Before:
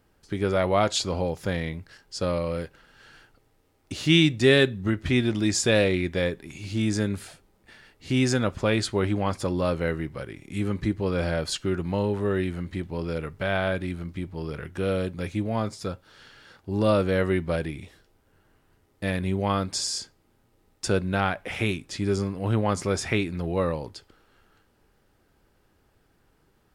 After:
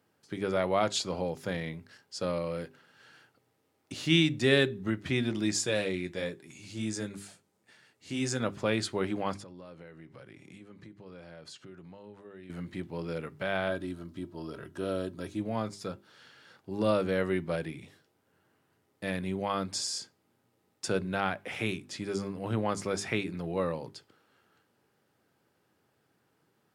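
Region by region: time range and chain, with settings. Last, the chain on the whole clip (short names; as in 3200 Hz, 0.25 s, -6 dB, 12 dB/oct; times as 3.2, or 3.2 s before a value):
5.64–8.4 flange 1.4 Hz, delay 5.6 ms, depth 6.5 ms, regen -49% + bell 7500 Hz +7 dB 0.99 oct
9.34–12.5 LPF 9200 Hz + compressor 10:1, threshold -39 dBFS
13.69–15.39 bell 2200 Hz -11 dB 0.48 oct + notch 810 Hz, Q 18 + comb 3.1 ms, depth 43%
whole clip: HPF 110 Hz 24 dB/oct; notches 50/100/150/200/250/300/350/400 Hz; gain -5 dB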